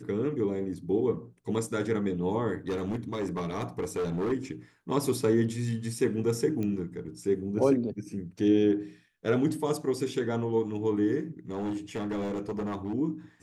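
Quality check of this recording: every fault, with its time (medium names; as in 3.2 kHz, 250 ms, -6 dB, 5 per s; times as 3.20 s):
2.69–4.33 s: clipped -26.5 dBFS
6.63 s: pop -22 dBFS
11.50–12.94 s: clipped -28 dBFS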